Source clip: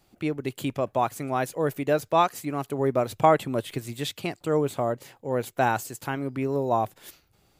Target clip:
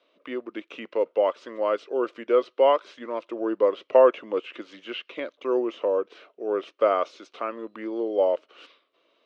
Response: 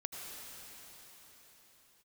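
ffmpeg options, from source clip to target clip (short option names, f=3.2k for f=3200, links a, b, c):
-filter_complex "[0:a]asetrate=36162,aresample=44100,highpass=f=350:w=0.5412,highpass=f=350:w=1.3066,equalizer=f=540:t=q:w=4:g=5,equalizer=f=800:t=q:w=4:g=-9,equalizer=f=1.2k:t=q:w=4:g=4,equalizer=f=1.8k:t=q:w=4:g=-7,equalizer=f=2.9k:t=q:w=4:g=3,lowpass=f=3.8k:w=0.5412,lowpass=f=3.8k:w=1.3066,acrossover=split=2800[a][b];[b]acompressor=threshold=-49dB:ratio=4:attack=1:release=60[c];[a][c]amix=inputs=2:normalize=0,volume=1.5dB"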